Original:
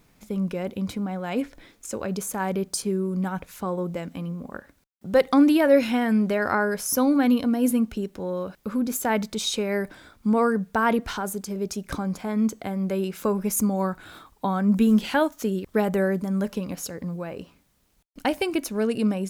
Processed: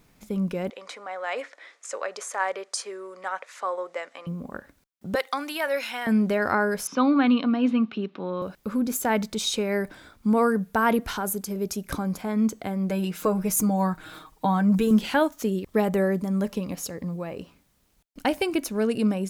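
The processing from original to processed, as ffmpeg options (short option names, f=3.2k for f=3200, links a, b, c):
-filter_complex "[0:a]asettb=1/sr,asplit=3[a][b][c];[a]atrim=end=0.704[d];[b]atrim=start=0.7:end=4.27,asetpts=PTS-STARTPTS,afade=t=in:d=0.004:c=qsin,afade=t=out:st=3.566:d=0.004:c=qsin,highpass=f=500:w=0.5412,highpass=f=500:w=1.3066,equalizer=f=580:t=q:w=4:g=3,equalizer=f=1.2k:t=q:w=4:g=6,equalizer=f=1.9k:t=q:w=4:g=9,lowpass=f=8.4k:w=0.5412,lowpass=f=8.4k:w=1.3066[e];[c]atrim=start=4.266[f];[d][e]acrossfade=d=0.004:c1=hsin:c2=qsin[g];[g][f]acrossfade=d=0.004:c1=qsin:c2=hsin,asettb=1/sr,asplit=3[h][i][j];[h]atrim=end=5.154[k];[i]atrim=start=5.15:end=6.07,asetpts=PTS-STARTPTS,afade=t=in:d=0.004:c=qsin,afade=t=out:st=0.916:d=0.004:c=qsin,highpass=920[l];[j]atrim=start=6.066[m];[k][l]acrossfade=d=0.004:c1=hsin:c2=qsin[n];[n][m]acrossfade=d=0.004:c1=qsin:c2=hsin,asettb=1/sr,asplit=3[o][p][q];[o]atrim=end=6.874[r];[p]atrim=start=6.87:end=8.42,asetpts=PTS-STARTPTS,afade=t=in:d=0.004:c=qsin,afade=t=out:st=1.546:d=0.004:c=qsin,highpass=f=160:w=0.5412,highpass=f=160:w=1.3066,equalizer=f=500:t=q:w=4:g=-4,equalizer=f=1.2k:t=q:w=4:g=9,equalizer=f=2.6k:t=q:w=4:g=6,equalizer=f=3.7k:t=q:w=4:g=5,lowpass=f=4.1k:w=0.5412,lowpass=f=4.1k:w=1.3066[s];[q]atrim=start=8.416[t];[r][s]acrossfade=d=0.004:c1=hsin:c2=qsin[u];[u][t]acrossfade=d=0.004:c1=qsin:c2=hsin,asettb=1/sr,asplit=3[v][w][x];[v]atrim=end=10.294[y];[w]atrim=start=10.29:end=12.22,asetpts=PTS-STARTPTS,afade=t=in:d=0.004:c=qsin,afade=t=out:st=1.926:d=0.004:c=qsin,equalizer=f=12k:w=1.9:g=8.5[z];[x]atrim=start=12.216[aa];[y][z]acrossfade=d=0.004:c1=hsin:c2=qsin[ab];[ab][aa]acrossfade=d=0.004:c1=qsin:c2=hsin,asettb=1/sr,asplit=3[ac][ad][ae];[ac]atrim=end=12.894[af];[ad]atrim=start=12.89:end=14.91,asetpts=PTS-STARTPTS,afade=t=in:d=0.004:c=qsin,afade=t=out:st=2.016:d=0.004:c=qsin,aecho=1:1:6.4:0.72,atrim=end_sample=89082[ag];[ae]atrim=start=14.906[ah];[af][ag]acrossfade=d=0.004:c1=hsin:c2=qsin[ai];[ai][ah]acrossfade=d=0.004:c1=qsin:c2=hsin,asettb=1/sr,asplit=3[aj][ak][al];[aj]atrim=end=15.424[am];[ak]atrim=start=15.42:end=17.39,asetpts=PTS-STARTPTS,afade=t=in:d=0.004:c=qsin,afade=t=out:st=1.966:d=0.004:c=qsin,bandreject=f=1.5k:w=10[an];[al]atrim=start=17.386[ao];[am][an]acrossfade=d=0.004:c1=hsin:c2=qsin[ap];[ap][ao]acrossfade=d=0.004:c1=qsin:c2=hsin"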